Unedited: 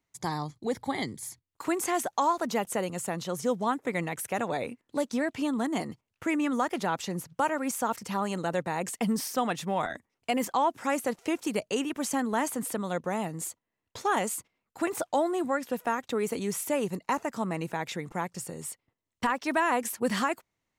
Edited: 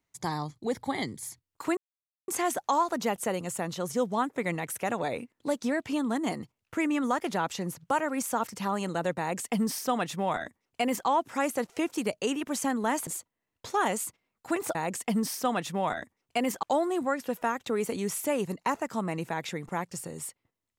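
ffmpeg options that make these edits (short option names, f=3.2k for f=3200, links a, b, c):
-filter_complex "[0:a]asplit=5[a][b][c][d][e];[a]atrim=end=1.77,asetpts=PTS-STARTPTS,afade=t=out:st=1.766:d=0.004:c=hsin,apad=pad_dur=0.51[f];[b]atrim=start=1.77:end=12.562,asetpts=PTS-STARTPTS,afade=t=in:d=0.004:c=hsin[g];[c]atrim=start=13.378:end=15.062[h];[d]atrim=start=8.678:end=10.562[i];[e]atrim=start=15.058[j];[f][g]concat=n=2:v=0:a=1[k];[k][h]acrossfade=d=0.004:c1=hsin:c2=hsin[l];[l][i]acrossfade=d=0.004:c1=hsin:c2=hsin[m];[m][j]acrossfade=d=0.004:c1=hsin:c2=hsin"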